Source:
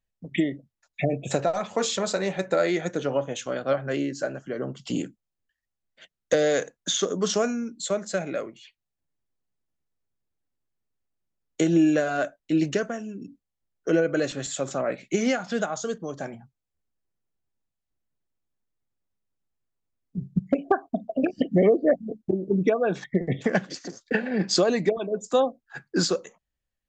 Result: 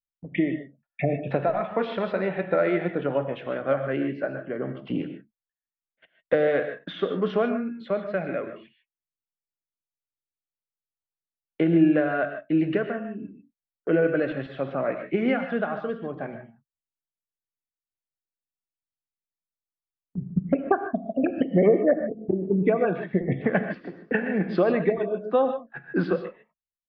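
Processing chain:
noise gate −48 dBFS, range −20 dB
inverse Chebyshev low-pass filter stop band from 6,400 Hz, stop band 50 dB
reverb whose tail is shaped and stops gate 170 ms rising, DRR 7.5 dB

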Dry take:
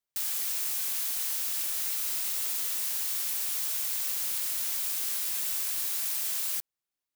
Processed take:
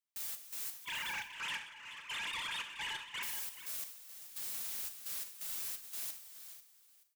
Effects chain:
0:00.85–0:03.23: three sine waves on the formant tracks
high-pass filter 820 Hz 6 dB per octave
comb filter 6.8 ms, depth 34%
brickwall limiter −26.5 dBFS, peak gain reduction 9 dB
hard clipping −33 dBFS, distortion −13 dB
gate pattern "xx.x.xx.x...x" 86 BPM −12 dB
soft clipping −36.5 dBFS, distortion −15 dB
single-tap delay 428 ms −10 dB
four-comb reverb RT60 0.53 s, combs from 28 ms, DRR 8 dB
expander for the loud parts 1.5 to 1, over −50 dBFS

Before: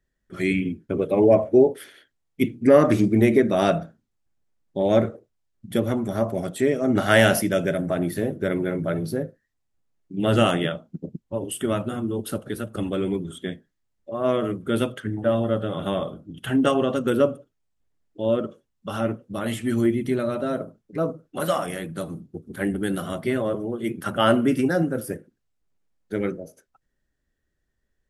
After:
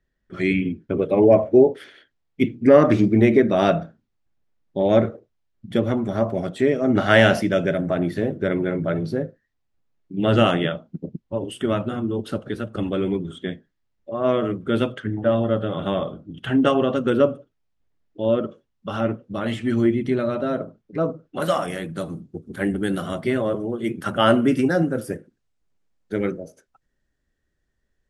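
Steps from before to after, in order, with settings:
low-pass filter 4,700 Hz 12 dB per octave, from 0:21.42 8,300 Hz
level +2 dB

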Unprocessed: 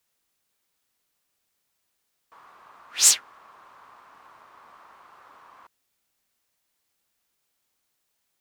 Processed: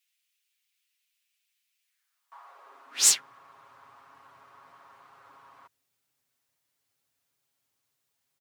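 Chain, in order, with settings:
high-pass filter sweep 2,500 Hz → 88 Hz, 0:01.81–0:03.47
comb filter 7.3 ms
level −5 dB

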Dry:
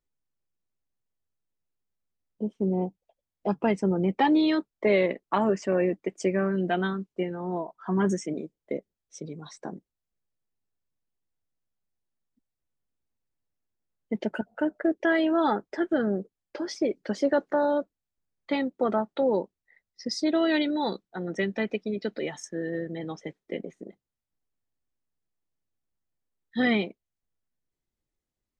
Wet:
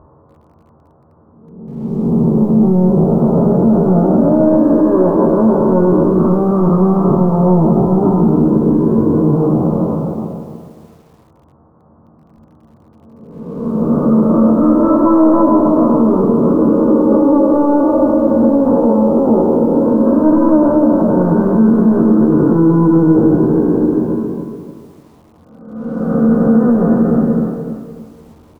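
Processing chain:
spectrum smeared in time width 764 ms
high-pass filter 69 Hz 12 dB per octave
mains-hum notches 50/100/150/200/250/300/350 Hz
downward compressor 2.5 to 1, threshold −46 dBFS, peak gain reduction 13.5 dB
power curve on the samples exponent 0.7
Butterworth low-pass 1,500 Hz 48 dB per octave
formants moved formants −4 semitones
double-tracking delay 22 ms −6 dB
ambience of single reflections 13 ms −6 dB, 31 ms −17 dB
feedback delay network reverb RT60 1.2 s, low-frequency decay 0.8×, high-frequency decay 0.5×, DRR 9 dB
boost into a limiter +33 dB
feedback echo at a low word length 294 ms, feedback 35%, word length 7 bits, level −10 dB
level −3 dB

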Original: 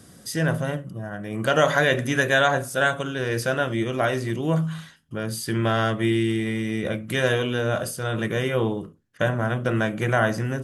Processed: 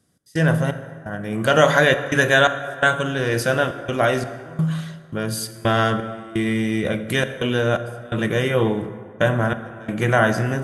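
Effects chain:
noise gate with hold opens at −35 dBFS
gate pattern "x.xx..xxxx" 85 BPM −24 dB
dense smooth reverb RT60 2.2 s, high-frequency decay 0.5×, DRR 10.5 dB
level +4 dB

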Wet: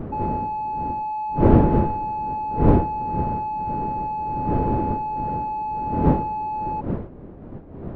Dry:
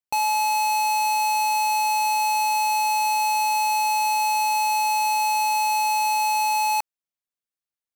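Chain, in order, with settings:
expanding power law on the bin magnitudes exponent 2.4
wind on the microphone 330 Hz −21 dBFS
head-to-tape spacing loss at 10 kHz 35 dB
level −2 dB

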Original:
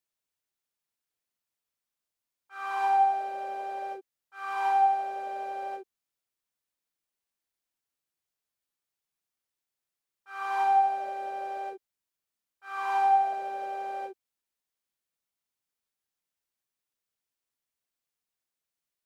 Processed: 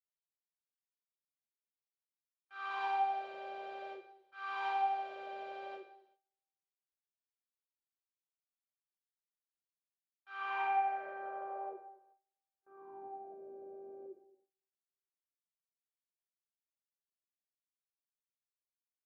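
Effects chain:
low-pass filter sweep 3,700 Hz → 300 Hz, 0:10.24–0:12.92
coupled-rooms reverb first 0.75 s, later 2 s, DRR 5 dB
noise gate with hold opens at −52 dBFS
level −8.5 dB

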